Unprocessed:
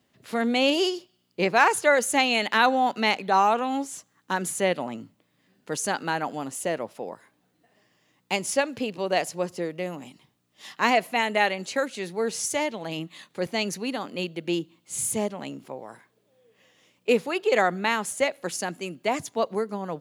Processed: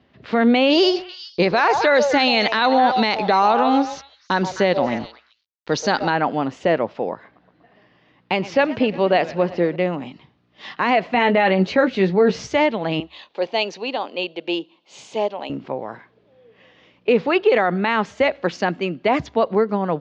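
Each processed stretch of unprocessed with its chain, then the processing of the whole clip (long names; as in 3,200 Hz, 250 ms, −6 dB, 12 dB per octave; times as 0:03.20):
0:00.70–0:06.10: flat-topped bell 4,900 Hz +10 dB 1 octave + centre clipping without the shift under −43 dBFS + echo through a band-pass that steps 129 ms, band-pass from 660 Hz, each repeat 1.4 octaves, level −8.5 dB
0:07.12–0:09.76: low-pass filter 6,000 Hz + feedback echo with a swinging delay time 119 ms, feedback 73%, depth 195 cents, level −21 dB
0:11.14–0:12.47: low-shelf EQ 440 Hz +7.5 dB + double-tracking delay 16 ms −7.5 dB
0:13.00–0:15.50: high-pass filter 530 Hz + flat-topped bell 1,600 Hz −8.5 dB 1.1 octaves
whole clip: Bessel low-pass filter 2,900 Hz, order 8; parametric band 69 Hz +14.5 dB 0.24 octaves; boost into a limiter +16.5 dB; level −6 dB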